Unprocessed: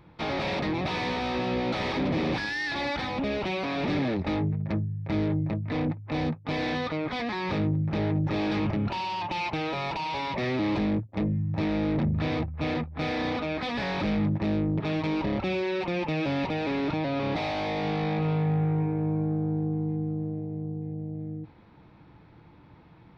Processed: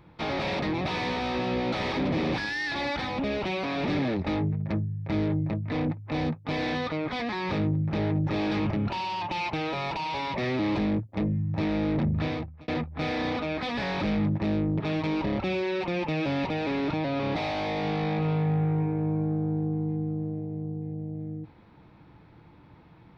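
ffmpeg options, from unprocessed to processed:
-filter_complex "[0:a]asplit=2[a][b];[a]atrim=end=12.68,asetpts=PTS-STARTPTS,afade=t=out:st=12.22:d=0.46[c];[b]atrim=start=12.68,asetpts=PTS-STARTPTS,afade=t=in:d=0.004:c=hsin[d];[c][d]concat=n=2:v=0:a=1"

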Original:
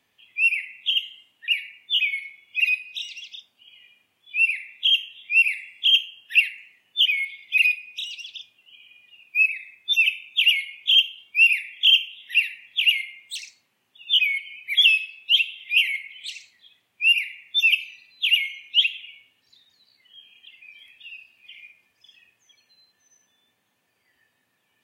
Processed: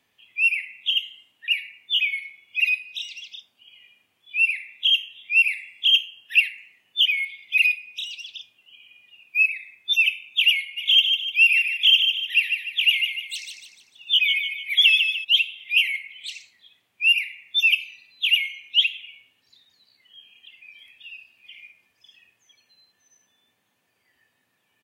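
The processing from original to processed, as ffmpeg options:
-filter_complex "[0:a]asplit=3[a][b][c];[a]afade=t=out:st=10.76:d=0.02[d];[b]aecho=1:1:149|298|447|596|745:0.501|0.21|0.0884|0.0371|0.0156,afade=t=in:st=10.76:d=0.02,afade=t=out:st=15.23:d=0.02[e];[c]afade=t=in:st=15.23:d=0.02[f];[d][e][f]amix=inputs=3:normalize=0"

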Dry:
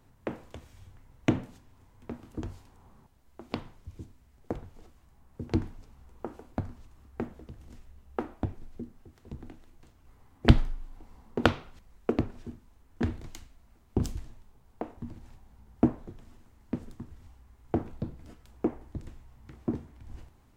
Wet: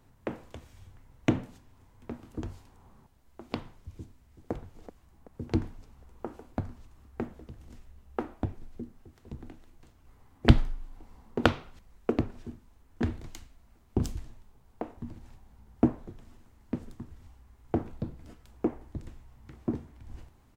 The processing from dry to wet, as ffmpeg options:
-filter_complex "[0:a]asplit=2[a][b];[b]afade=t=in:st=3.92:d=0.01,afade=t=out:st=4.51:d=0.01,aecho=0:1:380|760|1140|1520|1900:0.251189|0.125594|0.0627972|0.0313986|0.0156993[c];[a][c]amix=inputs=2:normalize=0"

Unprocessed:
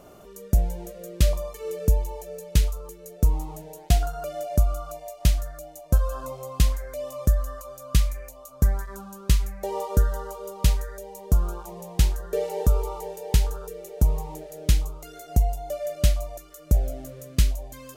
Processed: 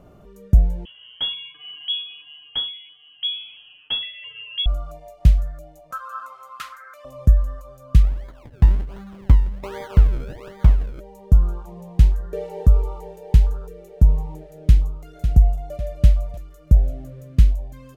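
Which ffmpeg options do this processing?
-filter_complex "[0:a]asettb=1/sr,asplit=3[a][b][c];[a]atrim=end=0.854[d];[b]atrim=start=0.85:end=4.66,asetpts=PTS-STARTPTS,afade=t=in:d=0.004:c=qsin,afade=t=out:st=3.806:d=0.004:c=qsin,lowpass=f=2.9k:t=q:w=0.5098,lowpass=f=2.9k:t=q:w=0.6013,lowpass=f=2.9k:t=q:w=0.9,lowpass=f=2.9k:t=q:w=2.563,afreqshift=-3400[e];[c]atrim=start=4.656[f];[d][e]acrossfade=d=0.004:c1=hsin:c2=qsin[g];[g][f]acrossfade=d=0.004:c1=qsin:c2=hsin,asettb=1/sr,asplit=3[h][i][j];[h]atrim=end=5.914[k];[i]atrim=start=5.91:end=7.05,asetpts=PTS-STARTPTS,afade=t=in:d=0.004:c=qsin,afade=t=out:st=1.136:d=0.004:c=qsin,highpass=f=1.3k:t=q:w=15[l];[j]atrim=start=7.046[m];[k][l]acrossfade=d=0.004:c1=hsin:c2=qsin[n];[n][m]acrossfade=d=0.004:c1=qsin:c2=hsin,asplit=3[o][p][q];[o]afade=t=out:st=8.02:d=0.02[r];[p]acrusher=samples=32:mix=1:aa=0.000001:lfo=1:lforange=32:lforate=1.3,afade=t=in:st=8.02:d=0.02,afade=t=out:st=10.99:d=0.02[s];[q]afade=t=in:st=10.99:d=0.02[t];[r][s][t]amix=inputs=3:normalize=0,asplit=2[u][v];[v]afade=t=in:st=14.59:d=0.01,afade=t=out:st=15.21:d=0.01,aecho=0:1:550|1100|1650|2200|2750:0.375837|0.169127|0.0761071|0.0342482|0.0154117[w];[u][w]amix=inputs=2:normalize=0,bass=f=250:g=11,treble=f=4k:g=-10,volume=-4dB"

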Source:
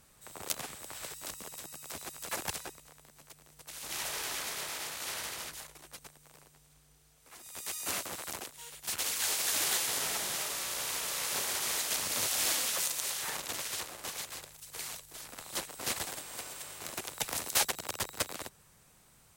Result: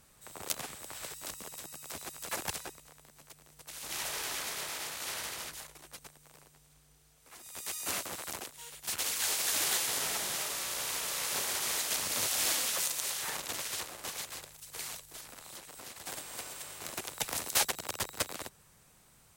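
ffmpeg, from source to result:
-filter_complex "[0:a]asettb=1/sr,asplit=3[a][b][c];[a]atrim=end=15.204[d];[b]atrim=start=15.2:end=16.06,asetpts=PTS-STARTPTS,afade=t=in:d=0.004:c=qsin,afade=t=out:st=0.856:d=0.004:c=qsin,acompressor=threshold=-44dB:ratio=6:attack=3.2:release=140:knee=1:detection=peak[e];[c]atrim=start=16.056[f];[d][e]acrossfade=d=0.004:c1=hsin:c2=qsin[g];[g][f]acrossfade=d=0.004:c1=qsin:c2=hsin"

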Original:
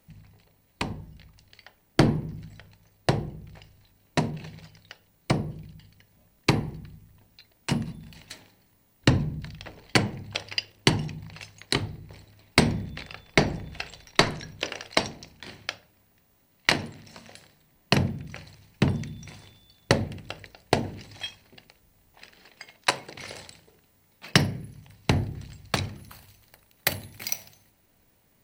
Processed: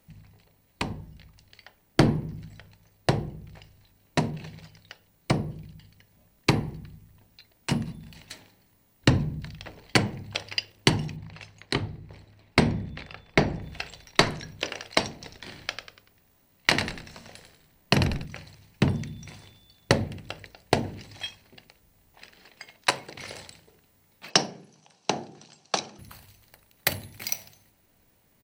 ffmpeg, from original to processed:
-filter_complex "[0:a]asettb=1/sr,asplit=3[a][b][c];[a]atrim=end=11.164[d];[b]atrim=start=11.16:end=13.62,asetpts=PTS-STARTPTS,afade=t=in:d=0.004:c=qsin,afade=t=out:st=2.456:d=0.004:c=qsin,lowpass=f=3.1k:p=1[e];[c]atrim=start=13.616[f];[d][e]acrossfade=d=0.004:c1=hsin:c2=qsin[g];[g][f]acrossfade=d=0.004:c1=qsin:c2=hsin,asplit=3[h][i][j];[h]afade=t=out:st=15.21:d=0.02[k];[i]asplit=5[l][m][n][o][p];[m]adelay=96,afreqshift=-63,volume=-7.5dB[q];[n]adelay=192,afreqshift=-126,volume=-15.7dB[r];[o]adelay=288,afreqshift=-189,volume=-23.9dB[s];[p]adelay=384,afreqshift=-252,volume=-32dB[t];[l][q][r][s][t]amix=inputs=5:normalize=0,afade=t=in:st=15.21:d=0.02,afade=t=out:st=18.24:d=0.02[u];[j]afade=t=in:st=18.24:d=0.02[v];[k][u][v]amix=inputs=3:normalize=0,asettb=1/sr,asplit=3[w][x][y];[w]atrim=end=24.304[z];[x]atrim=start=24.3:end=25.99,asetpts=PTS-STARTPTS,afade=t=in:d=0.004:c=qsin,afade=t=out:st=1.686:d=0.004:c=qsin,highpass=f=220:w=0.5412,highpass=f=220:w=1.3066,equalizer=f=260:t=q:w=4:g=-9,equalizer=f=770:t=q:w=4:g=6,equalizer=f=2k:t=q:w=4:g=-10,equalizer=f=5.9k:t=q:w=4:g=8,lowpass=f=8k:w=0.5412,lowpass=f=8k:w=1.3066[aa];[y]atrim=start=25.986[ab];[z][aa]acrossfade=d=0.004:c1=hsin:c2=qsin[ac];[ac][ab]acrossfade=d=0.004:c1=qsin:c2=hsin"

